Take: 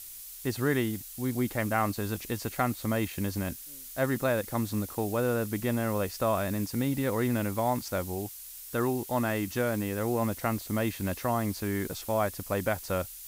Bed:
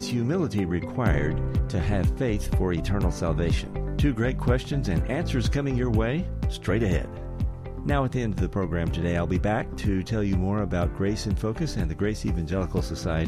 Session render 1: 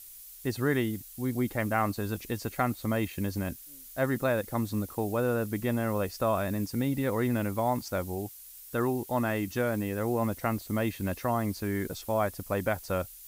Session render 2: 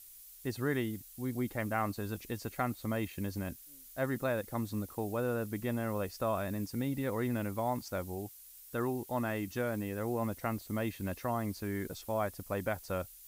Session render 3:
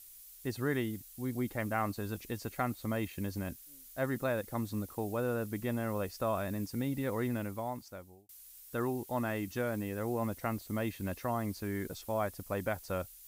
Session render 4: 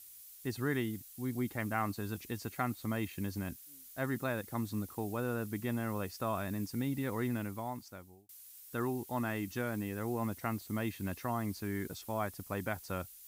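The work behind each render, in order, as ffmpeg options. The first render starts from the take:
-af "afftdn=nr=6:nf=-45"
-af "volume=-5.5dB"
-filter_complex "[0:a]asplit=2[a][b];[a]atrim=end=8.29,asetpts=PTS-STARTPTS,afade=t=out:st=7.23:d=1.06[c];[b]atrim=start=8.29,asetpts=PTS-STARTPTS,afade=t=in:d=0.004:c=hsin[d];[c][d]concat=n=2:v=0:a=1"
-af "highpass=68,equalizer=f=550:t=o:w=0.57:g=-6.5"

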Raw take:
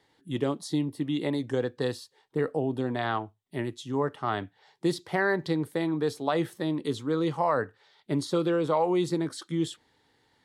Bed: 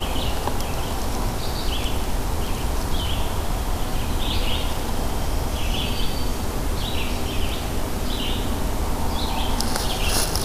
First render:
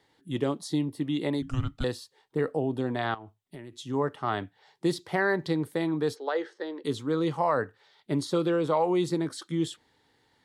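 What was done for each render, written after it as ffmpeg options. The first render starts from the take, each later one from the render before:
-filter_complex "[0:a]asettb=1/sr,asplit=3[a][b][c];[a]atrim=end=1.424[d];[b]atrim=start=1.42:end=1.84,asetpts=PTS-STARTPTS,afade=t=in:d=0.004:c=qsin,afade=t=out:st=0.416:d=0.004:c=qsin,afreqshift=-390[e];[c]atrim=start=1.836[f];[d][e]acrossfade=d=0.004:c1=hsin:c2=qsin[g];[g][f]acrossfade=d=0.004:c1=qsin:c2=hsin,asettb=1/sr,asplit=3[h][i][j];[h]atrim=end=3.144[k];[i]atrim=start=3.14:end=3.76,asetpts=PTS-STARTPTS,afade=t=in:d=0.004:c=qsin,afade=t=out:st=0.616:d=0.004:c=qsin,acompressor=threshold=-38dB:ratio=16:attack=3.2:release=140:knee=1:detection=peak[l];[j]atrim=start=3.756[m];[k][l]acrossfade=d=0.004:c1=hsin:c2=qsin[n];[n][m]acrossfade=d=0.004:c1=qsin:c2=hsin,asplit=3[o][p][q];[o]afade=t=out:st=6.14:d=0.02[r];[p]highpass=f=400:w=0.5412,highpass=f=400:w=1.3066,equalizer=f=450:t=q:w=4:g=5,equalizer=f=670:t=q:w=4:g=-7,equalizer=f=1.1k:t=q:w=4:g=-6,equalizer=f=1.6k:t=q:w=4:g=4,equalizer=f=2.5k:t=q:w=4:g=-9,equalizer=f=3.6k:t=q:w=4:g=-6,lowpass=f=5.3k:w=0.5412,lowpass=f=5.3k:w=1.3066,afade=t=in:st=6.14:d=0.02,afade=t=out:st=6.83:d=0.02[s];[q]afade=t=in:st=6.83:d=0.02[t];[r][s][t]amix=inputs=3:normalize=0"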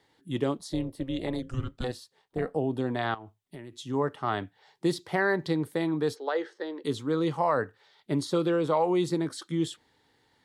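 -filter_complex "[0:a]asettb=1/sr,asplit=3[a][b][c];[a]atrim=end=0.574[d];[b]atrim=start=0.57:end=2.56,asetpts=PTS-STARTPTS,afade=t=in:d=0.004:c=qsin,afade=t=out:st=1.986:d=0.004:c=qsin,tremolo=f=260:d=0.667[e];[c]atrim=start=2.556[f];[d][e]acrossfade=d=0.004:c1=hsin:c2=qsin[g];[g][f]acrossfade=d=0.004:c1=qsin:c2=hsin"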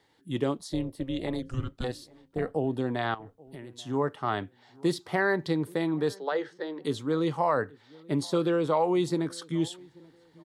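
-filter_complex "[0:a]asplit=2[a][b];[b]adelay=834,lowpass=f=1.5k:p=1,volume=-24dB,asplit=2[c][d];[d]adelay=834,lowpass=f=1.5k:p=1,volume=0.3[e];[a][c][e]amix=inputs=3:normalize=0"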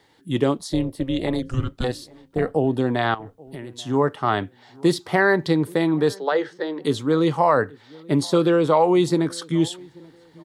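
-af "volume=8dB"

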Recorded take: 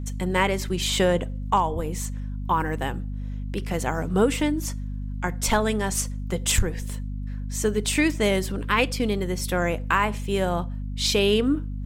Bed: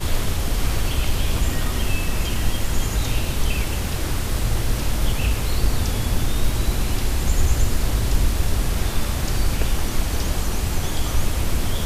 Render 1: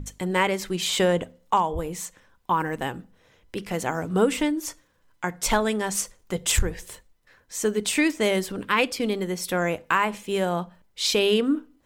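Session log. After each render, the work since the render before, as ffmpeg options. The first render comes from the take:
-af "bandreject=f=50:t=h:w=6,bandreject=f=100:t=h:w=6,bandreject=f=150:t=h:w=6,bandreject=f=200:t=h:w=6,bandreject=f=250:t=h:w=6"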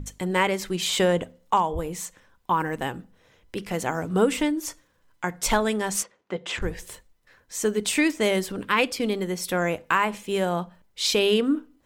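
-filter_complex "[0:a]asplit=3[a][b][c];[a]afade=t=out:st=6.02:d=0.02[d];[b]highpass=230,lowpass=2.8k,afade=t=in:st=6.02:d=0.02,afade=t=out:st=6.61:d=0.02[e];[c]afade=t=in:st=6.61:d=0.02[f];[d][e][f]amix=inputs=3:normalize=0"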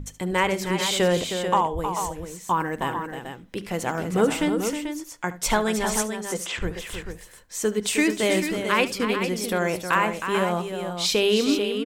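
-af "aecho=1:1:73|314|439:0.15|0.376|0.398"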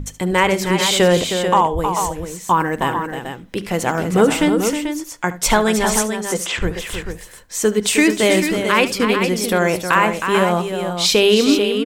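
-af "volume=7.5dB,alimiter=limit=-3dB:level=0:latency=1"

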